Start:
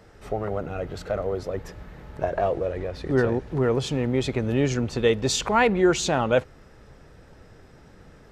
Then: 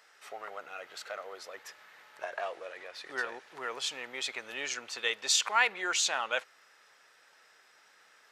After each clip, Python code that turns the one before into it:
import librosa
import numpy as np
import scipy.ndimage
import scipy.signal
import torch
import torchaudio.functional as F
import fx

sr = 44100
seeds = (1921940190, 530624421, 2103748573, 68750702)

y = scipy.signal.sosfilt(scipy.signal.butter(2, 1400.0, 'highpass', fs=sr, output='sos'), x)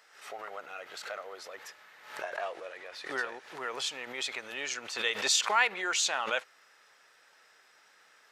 y = fx.pre_swell(x, sr, db_per_s=91.0)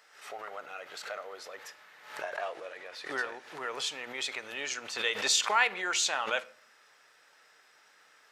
y = fx.room_shoebox(x, sr, seeds[0], volume_m3=560.0, walls='furnished', distance_m=0.41)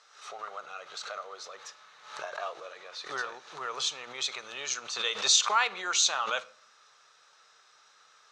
y = fx.cabinet(x, sr, low_hz=130.0, low_slope=12, high_hz=8700.0, hz=(130.0, 280.0, 1200.0, 1900.0, 3900.0, 6200.0), db=(7, -9, 9, -5, 9, 9))
y = y * 10.0 ** (-2.0 / 20.0)